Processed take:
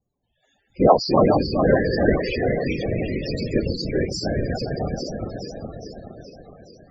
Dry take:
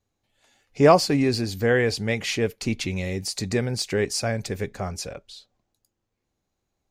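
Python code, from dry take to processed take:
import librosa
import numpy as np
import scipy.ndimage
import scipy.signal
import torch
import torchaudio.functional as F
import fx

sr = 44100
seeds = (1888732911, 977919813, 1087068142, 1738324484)

y = fx.reverse_delay_fb(x, sr, ms=210, feedback_pct=77, wet_db=-3.0)
y = fx.whisperise(y, sr, seeds[0])
y = fx.spec_topn(y, sr, count=32)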